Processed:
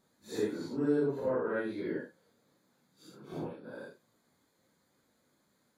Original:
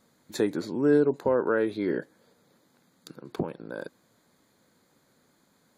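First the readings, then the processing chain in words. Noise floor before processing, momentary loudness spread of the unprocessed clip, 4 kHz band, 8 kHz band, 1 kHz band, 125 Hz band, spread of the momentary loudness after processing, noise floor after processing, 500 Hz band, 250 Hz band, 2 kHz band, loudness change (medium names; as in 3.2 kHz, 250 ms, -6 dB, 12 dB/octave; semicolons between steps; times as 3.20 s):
-67 dBFS, 17 LU, -7.0 dB, no reading, -8.0 dB, -6.0 dB, 17 LU, -74 dBFS, -7.5 dB, -7.0 dB, -7.0 dB, -7.0 dB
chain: phase randomisation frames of 200 ms; trim -7 dB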